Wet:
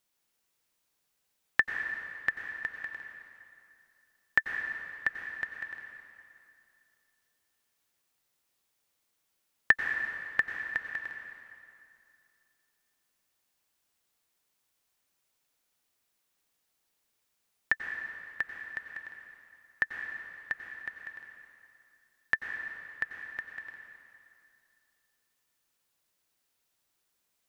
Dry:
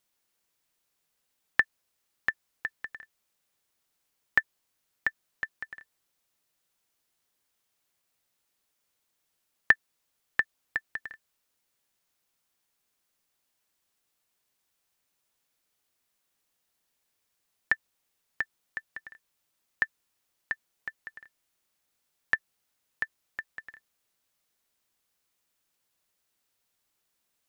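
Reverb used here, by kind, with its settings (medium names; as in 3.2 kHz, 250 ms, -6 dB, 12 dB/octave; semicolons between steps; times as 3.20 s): plate-style reverb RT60 2.5 s, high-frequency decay 0.85×, pre-delay 80 ms, DRR 3.5 dB; trim -1.5 dB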